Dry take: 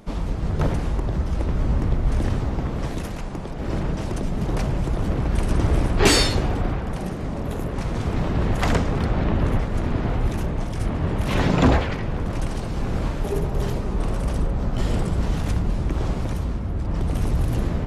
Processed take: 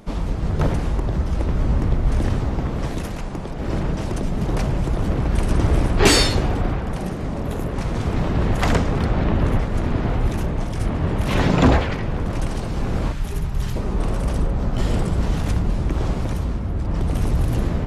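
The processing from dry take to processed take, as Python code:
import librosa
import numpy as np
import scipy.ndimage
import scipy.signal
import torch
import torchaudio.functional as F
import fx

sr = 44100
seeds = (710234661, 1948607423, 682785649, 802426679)

y = fx.peak_eq(x, sr, hz=470.0, db=-13.5, octaves=1.9, at=(13.12, 13.76))
y = F.gain(torch.from_numpy(y), 2.0).numpy()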